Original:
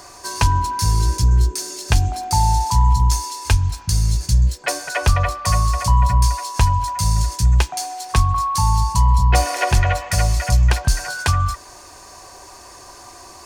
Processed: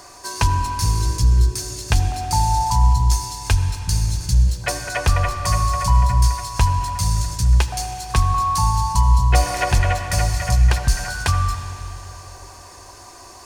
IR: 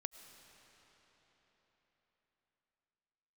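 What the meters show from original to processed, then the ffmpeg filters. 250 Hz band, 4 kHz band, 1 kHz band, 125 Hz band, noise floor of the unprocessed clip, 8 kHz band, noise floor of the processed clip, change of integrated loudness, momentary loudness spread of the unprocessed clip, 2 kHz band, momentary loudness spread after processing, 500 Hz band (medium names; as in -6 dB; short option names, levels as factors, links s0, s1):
-1.0 dB, -1.0 dB, -1.0 dB, -1.0 dB, -42 dBFS, -1.0 dB, -42 dBFS, -1.0 dB, 5 LU, -1.0 dB, 8 LU, -1.0 dB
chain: -filter_complex "[1:a]atrim=start_sample=2205,asetrate=61740,aresample=44100[s0];[0:a][s0]afir=irnorm=-1:irlink=0,volume=1.78"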